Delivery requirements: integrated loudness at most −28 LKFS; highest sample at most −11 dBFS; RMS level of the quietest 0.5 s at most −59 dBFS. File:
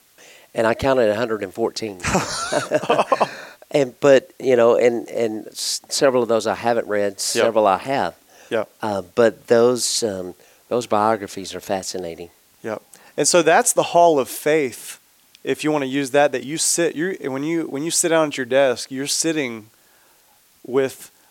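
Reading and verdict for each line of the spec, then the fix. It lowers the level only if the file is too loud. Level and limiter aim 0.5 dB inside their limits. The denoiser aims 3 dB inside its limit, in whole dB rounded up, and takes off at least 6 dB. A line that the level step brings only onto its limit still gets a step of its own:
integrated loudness −19.5 LKFS: out of spec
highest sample −3.0 dBFS: out of spec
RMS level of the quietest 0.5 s −56 dBFS: out of spec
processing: level −9 dB

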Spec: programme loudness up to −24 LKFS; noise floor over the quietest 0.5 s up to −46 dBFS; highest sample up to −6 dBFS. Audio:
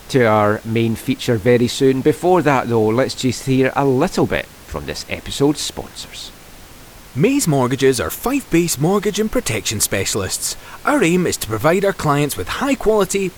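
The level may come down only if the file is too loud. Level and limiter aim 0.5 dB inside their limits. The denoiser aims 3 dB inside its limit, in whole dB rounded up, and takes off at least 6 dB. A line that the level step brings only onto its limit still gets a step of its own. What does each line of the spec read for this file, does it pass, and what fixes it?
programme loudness −17.0 LKFS: out of spec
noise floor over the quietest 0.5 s −40 dBFS: out of spec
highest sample −2.5 dBFS: out of spec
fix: level −7.5 dB

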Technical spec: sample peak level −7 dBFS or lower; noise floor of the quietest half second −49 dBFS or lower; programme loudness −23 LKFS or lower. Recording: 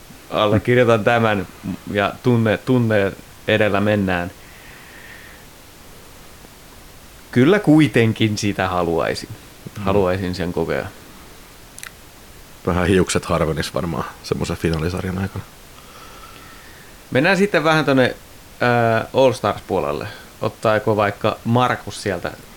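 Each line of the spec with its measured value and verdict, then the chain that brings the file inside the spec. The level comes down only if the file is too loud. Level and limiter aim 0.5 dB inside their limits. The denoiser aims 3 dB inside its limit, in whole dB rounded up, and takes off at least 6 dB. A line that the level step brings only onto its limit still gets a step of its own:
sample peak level −4.0 dBFS: out of spec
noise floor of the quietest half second −42 dBFS: out of spec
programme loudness −18.5 LKFS: out of spec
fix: broadband denoise 6 dB, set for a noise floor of −42 dBFS
level −5 dB

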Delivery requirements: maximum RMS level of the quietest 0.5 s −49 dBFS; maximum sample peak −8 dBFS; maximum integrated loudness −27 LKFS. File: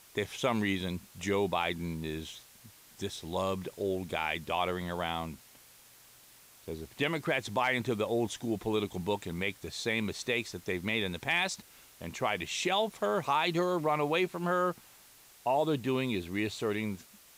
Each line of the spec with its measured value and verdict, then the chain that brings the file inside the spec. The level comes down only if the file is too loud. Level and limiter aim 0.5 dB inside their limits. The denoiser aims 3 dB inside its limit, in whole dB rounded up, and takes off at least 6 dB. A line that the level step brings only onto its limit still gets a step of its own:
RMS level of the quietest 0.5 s −58 dBFS: in spec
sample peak −16.0 dBFS: in spec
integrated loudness −32.5 LKFS: in spec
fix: no processing needed

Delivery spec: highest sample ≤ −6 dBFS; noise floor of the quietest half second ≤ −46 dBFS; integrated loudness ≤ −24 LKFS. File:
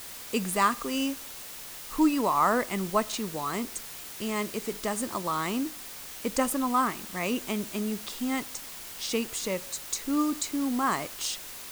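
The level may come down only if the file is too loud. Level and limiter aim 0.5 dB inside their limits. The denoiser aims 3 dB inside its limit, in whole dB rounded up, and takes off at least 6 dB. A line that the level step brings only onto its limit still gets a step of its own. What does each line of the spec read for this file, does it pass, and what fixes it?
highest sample −11.5 dBFS: in spec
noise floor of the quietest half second −42 dBFS: out of spec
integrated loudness −29.5 LKFS: in spec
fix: broadband denoise 7 dB, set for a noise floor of −42 dBFS

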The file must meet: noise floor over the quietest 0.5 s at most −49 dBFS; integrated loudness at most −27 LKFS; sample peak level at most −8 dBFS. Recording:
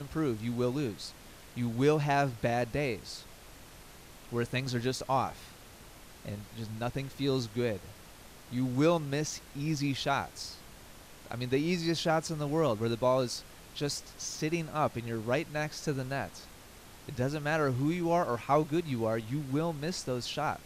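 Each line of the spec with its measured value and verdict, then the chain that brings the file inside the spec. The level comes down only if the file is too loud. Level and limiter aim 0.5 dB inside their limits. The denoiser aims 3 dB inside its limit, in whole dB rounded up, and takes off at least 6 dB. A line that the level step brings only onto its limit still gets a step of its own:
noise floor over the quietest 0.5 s −52 dBFS: in spec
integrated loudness −32.0 LKFS: in spec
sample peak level −13.5 dBFS: in spec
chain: no processing needed

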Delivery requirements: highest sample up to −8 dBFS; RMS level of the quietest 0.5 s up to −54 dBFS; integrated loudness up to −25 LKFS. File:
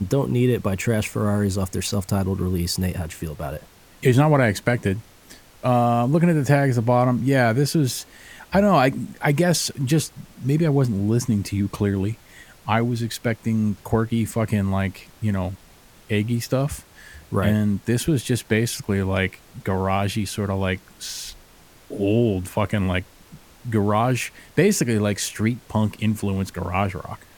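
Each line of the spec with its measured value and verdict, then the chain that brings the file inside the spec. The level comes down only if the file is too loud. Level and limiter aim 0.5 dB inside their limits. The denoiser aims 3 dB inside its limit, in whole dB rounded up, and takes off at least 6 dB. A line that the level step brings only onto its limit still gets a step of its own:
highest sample −4.5 dBFS: out of spec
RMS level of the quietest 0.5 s −50 dBFS: out of spec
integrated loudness −22.0 LKFS: out of spec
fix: broadband denoise 6 dB, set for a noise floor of −50 dBFS
level −3.5 dB
brickwall limiter −8.5 dBFS

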